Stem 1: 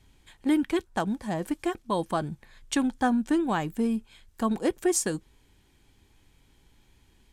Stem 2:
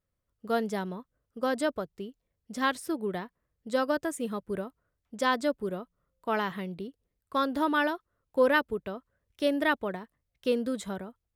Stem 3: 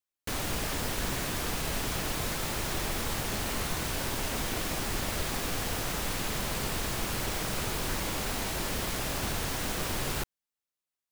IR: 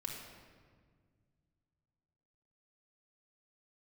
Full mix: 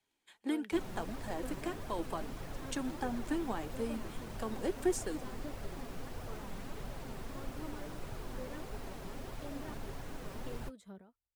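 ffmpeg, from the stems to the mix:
-filter_complex "[0:a]acrossover=split=490[link_01][link_02];[link_02]acompressor=threshold=-33dB:ratio=6[link_03];[link_01][link_03]amix=inputs=2:normalize=0,agate=range=-10dB:threshold=-55dB:ratio=16:detection=peak,highpass=320,volume=-2dB[link_04];[1:a]acrossover=split=480[link_05][link_06];[link_06]acompressor=threshold=-44dB:ratio=2.5[link_07];[link_05][link_07]amix=inputs=2:normalize=0,volume=-13dB[link_08];[2:a]tiltshelf=frequency=1500:gain=6.5,flanger=delay=7:depth=1.1:regen=-51:speed=0.94:shape=triangular,adelay=450,volume=-7.5dB[link_09];[link_04][link_08][link_09]amix=inputs=3:normalize=0,flanger=delay=1.1:depth=4.3:regen=51:speed=1.6:shape=triangular"

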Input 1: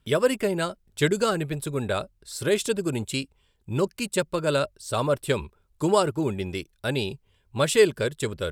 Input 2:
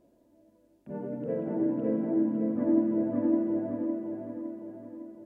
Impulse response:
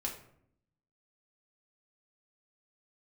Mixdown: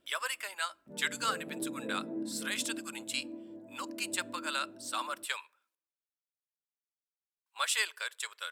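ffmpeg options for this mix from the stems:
-filter_complex "[0:a]highpass=frequency=1000:width=0.5412,highpass=frequency=1000:width=1.3066,volume=-4dB,asplit=3[link_01][link_02][link_03];[link_01]atrim=end=5.75,asetpts=PTS-STARTPTS,afade=type=out:start_time=5.746:duration=0.004:curve=hsin[link_04];[link_02]atrim=start=5.75:end=7.46,asetpts=PTS-STARTPTS,volume=0[link_05];[link_03]atrim=start=7.46,asetpts=PTS-STARTPTS,afade=type=in:duration=0.004:curve=hsin[link_06];[link_04][link_05][link_06]concat=n=3:v=0:a=1,asplit=2[link_07][link_08];[link_08]volume=-22.5dB[link_09];[1:a]volume=-1dB,afade=type=out:start_time=2.17:duration=0.66:silence=0.398107,afade=type=in:start_time=3.78:duration=0.3:silence=0.298538,asplit=2[link_10][link_11];[link_11]volume=-20.5dB[link_12];[2:a]atrim=start_sample=2205[link_13];[link_09][link_12]amix=inputs=2:normalize=0[link_14];[link_14][link_13]afir=irnorm=-1:irlink=0[link_15];[link_07][link_10][link_15]amix=inputs=3:normalize=0"

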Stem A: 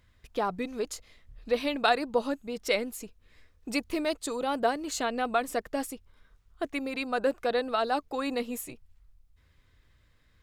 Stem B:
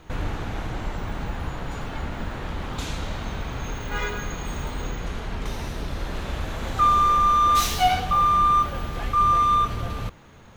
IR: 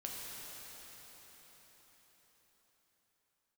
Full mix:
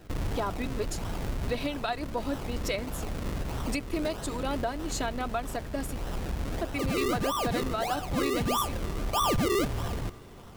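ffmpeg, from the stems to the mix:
-filter_complex "[0:a]aecho=1:1:3.1:0.42,volume=1dB[link_01];[1:a]acrusher=samples=38:mix=1:aa=0.000001:lfo=1:lforange=38:lforate=1.6,asoftclip=type=tanh:threshold=-22dB,volume=-2dB,asplit=2[link_02][link_03];[link_03]volume=-17.5dB[link_04];[2:a]atrim=start_sample=2205[link_05];[link_04][link_05]afir=irnorm=-1:irlink=0[link_06];[link_01][link_02][link_06]amix=inputs=3:normalize=0,alimiter=limit=-19.5dB:level=0:latency=1:release=494"

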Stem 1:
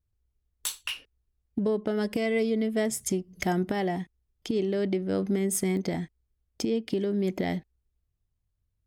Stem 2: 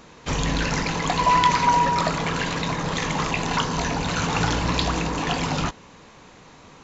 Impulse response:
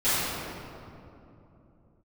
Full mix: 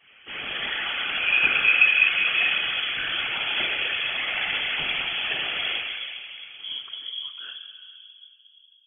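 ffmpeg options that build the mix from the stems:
-filter_complex "[0:a]aphaser=in_gain=1:out_gain=1:delay=1.6:decay=0.55:speed=0.31:type=triangular,volume=-5.5dB,asplit=2[link_01][link_02];[link_02]volume=-20dB[link_03];[1:a]highpass=frequency=830:poles=1,bandreject=frequency=2500:width=5.2,volume=-4.5dB,asplit=2[link_04][link_05];[link_05]volume=-3.5dB[link_06];[2:a]atrim=start_sample=2205[link_07];[link_03][link_06]amix=inputs=2:normalize=0[link_08];[link_08][link_07]afir=irnorm=-1:irlink=0[link_09];[link_01][link_04][link_09]amix=inputs=3:normalize=0,highpass=130,afftfilt=real='hypot(re,im)*cos(2*PI*random(0))':imag='hypot(re,im)*sin(2*PI*random(1))':win_size=512:overlap=0.75,lowpass=frequency=3000:width_type=q:width=0.5098,lowpass=frequency=3000:width_type=q:width=0.6013,lowpass=frequency=3000:width_type=q:width=0.9,lowpass=frequency=3000:width_type=q:width=2.563,afreqshift=-3500"

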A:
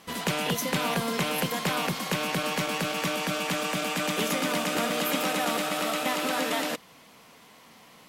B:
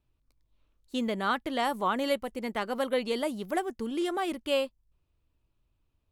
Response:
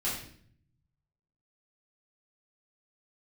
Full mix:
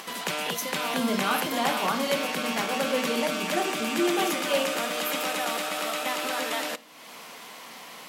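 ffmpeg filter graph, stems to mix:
-filter_complex "[0:a]highpass=130,lowshelf=frequency=260:gain=-12,acompressor=mode=upward:threshold=-32dB:ratio=2.5,volume=-0.5dB,asplit=2[link_01][link_02];[link_02]volume=-22.5dB[link_03];[1:a]volume=-2.5dB,asplit=2[link_04][link_05];[link_05]volume=-6.5dB[link_06];[2:a]atrim=start_sample=2205[link_07];[link_03][link_06]amix=inputs=2:normalize=0[link_08];[link_08][link_07]afir=irnorm=-1:irlink=0[link_09];[link_01][link_04][link_09]amix=inputs=3:normalize=0,highpass=100"

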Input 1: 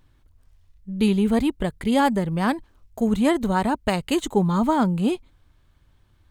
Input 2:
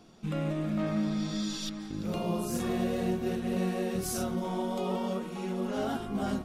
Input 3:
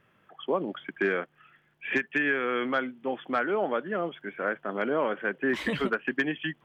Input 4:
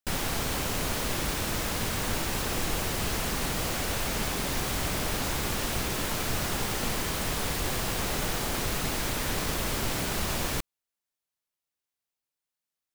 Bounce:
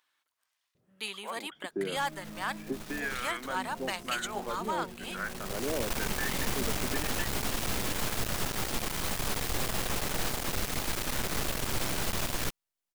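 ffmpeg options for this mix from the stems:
ffmpeg -i stem1.wav -i stem2.wav -i stem3.wav -i stem4.wav -filter_complex "[0:a]highpass=1200,volume=-3.5dB,asplit=2[link_01][link_02];[1:a]adelay=1550,volume=-15.5dB[link_03];[2:a]acrossover=split=740[link_04][link_05];[link_04]aeval=exprs='val(0)*(1-1/2+1/2*cos(2*PI*1*n/s))':channel_layout=same[link_06];[link_05]aeval=exprs='val(0)*(1-1/2-1/2*cos(2*PI*1*n/s))':channel_layout=same[link_07];[link_06][link_07]amix=inputs=2:normalize=0,adelay=750,volume=-4dB[link_08];[3:a]aeval=exprs='max(val(0),0)':channel_layout=same,adelay=1900,volume=3dB[link_09];[link_02]apad=whole_len=654496[link_10];[link_09][link_10]sidechaincompress=threshold=-54dB:ratio=6:attack=40:release=578[link_11];[link_01][link_03][link_08][link_11]amix=inputs=4:normalize=0,asoftclip=type=hard:threshold=-23.5dB" out.wav

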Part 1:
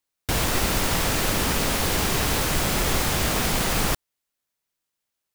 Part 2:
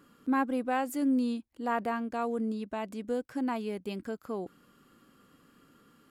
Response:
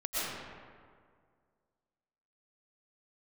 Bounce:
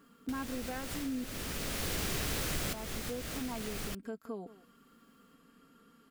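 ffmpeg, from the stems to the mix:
-filter_complex "[0:a]equalizer=frequency=900:width_type=o:width=0.7:gain=-7,volume=3dB[link_01];[1:a]aecho=1:1:4.4:0.57,volume=-3dB,asplit=3[link_02][link_03][link_04];[link_02]atrim=end=1.24,asetpts=PTS-STARTPTS,afade=type=out:start_time=1.236:duration=0.004:curve=hsin[link_05];[link_03]atrim=start=1.24:end=2.7,asetpts=PTS-STARTPTS,volume=0[link_06];[link_04]atrim=start=2.7,asetpts=PTS-STARTPTS,afade=type=in:duration=0.004:curve=hsin[link_07];[link_05][link_06][link_07]concat=n=3:v=0:a=1,asplit=3[link_08][link_09][link_10];[link_09]volume=-21.5dB[link_11];[link_10]apad=whole_len=235717[link_12];[link_01][link_12]sidechaincompress=threshold=-44dB:ratio=5:attack=5.4:release=605[link_13];[link_11]aecho=0:1:175:1[link_14];[link_13][link_08][link_14]amix=inputs=3:normalize=0,acompressor=threshold=-39dB:ratio=2.5"

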